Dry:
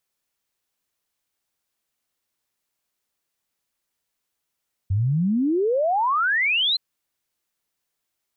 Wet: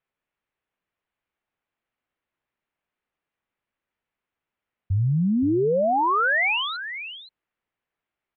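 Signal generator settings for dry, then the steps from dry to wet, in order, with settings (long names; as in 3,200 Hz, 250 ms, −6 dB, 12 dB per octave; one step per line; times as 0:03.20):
exponential sine sweep 91 Hz → 4,200 Hz 1.87 s −18 dBFS
low-pass filter 2,700 Hz 24 dB per octave
on a send: single-tap delay 521 ms −11.5 dB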